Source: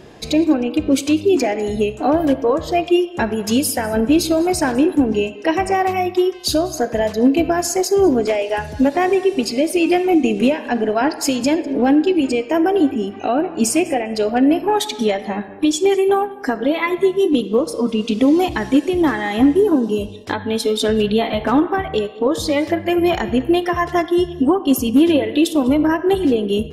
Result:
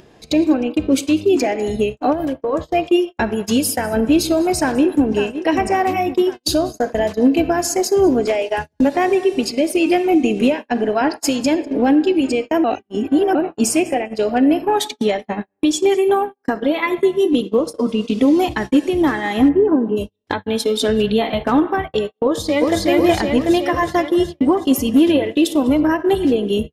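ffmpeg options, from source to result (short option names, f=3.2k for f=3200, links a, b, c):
-filter_complex "[0:a]asplit=3[a][b][c];[a]afade=t=out:st=2.12:d=0.02[d];[b]acompressor=threshold=-17dB:ratio=20:attack=3.2:release=140:knee=1:detection=peak,afade=t=in:st=2.12:d=0.02,afade=t=out:st=2.52:d=0.02[e];[c]afade=t=in:st=2.52:d=0.02[f];[d][e][f]amix=inputs=3:normalize=0,asplit=2[g][h];[h]afade=t=in:st=4.6:d=0.01,afade=t=out:st=5.13:d=0.01,aecho=0:1:550|1100|1650|2200|2750|3300|3850|4400|4950:0.316228|0.205548|0.133606|0.0868441|0.0564486|0.0366916|0.0238495|0.0155022|0.0100764[i];[g][i]amix=inputs=2:normalize=0,asplit=3[j][k][l];[j]afade=t=out:st=19.48:d=0.02[m];[k]lowpass=f=2.1k:w=0.5412,lowpass=f=2.1k:w=1.3066,afade=t=in:st=19.48:d=0.02,afade=t=out:st=19.96:d=0.02[n];[l]afade=t=in:st=19.96:d=0.02[o];[m][n][o]amix=inputs=3:normalize=0,asplit=2[p][q];[q]afade=t=in:st=22.24:d=0.01,afade=t=out:st=22.84:d=0.01,aecho=0:1:370|740|1110|1480|1850|2220|2590|2960|3330|3700|4070:0.891251|0.579313|0.376554|0.24476|0.159094|0.103411|0.0672172|0.0436912|0.0283992|0.0184595|0.0119987[r];[p][r]amix=inputs=2:normalize=0,asplit=3[s][t][u];[s]atrim=end=12.642[v];[t]atrim=start=12.638:end=13.352,asetpts=PTS-STARTPTS,areverse[w];[u]atrim=start=13.348[x];[v][w]acrossfade=d=0.004:c1=hsin:c2=hsin[y];[y][x]acrossfade=d=0.004:c1=hsin:c2=hsin,agate=range=-47dB:threshold=-22dB:ratio=16:detection=peak,acompressor=mode=upward:threshold=-17dB:ratio=2.5"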